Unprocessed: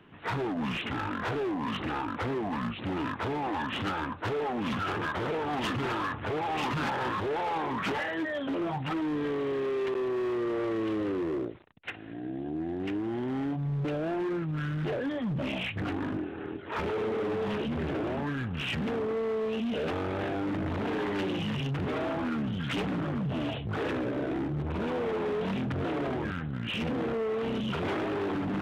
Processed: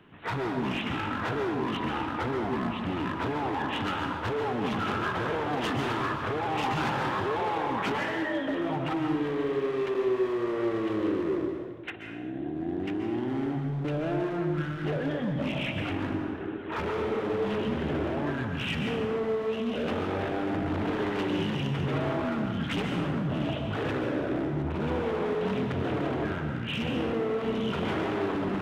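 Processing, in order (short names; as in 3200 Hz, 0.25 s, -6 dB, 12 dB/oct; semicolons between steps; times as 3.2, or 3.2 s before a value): plate-style reverb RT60 1.3 s, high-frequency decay 0.75×, pre-delay 0.115 s, DRR 3 dB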